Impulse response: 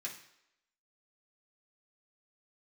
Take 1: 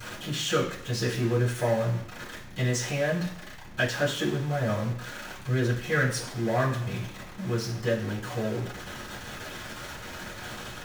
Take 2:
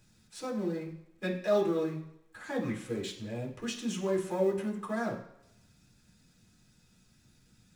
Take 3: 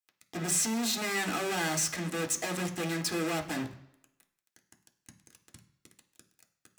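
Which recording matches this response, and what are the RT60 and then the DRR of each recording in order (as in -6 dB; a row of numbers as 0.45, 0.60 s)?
2; not exponential, not exponential, not exponential; -12.0, -4.0, 4.0 dB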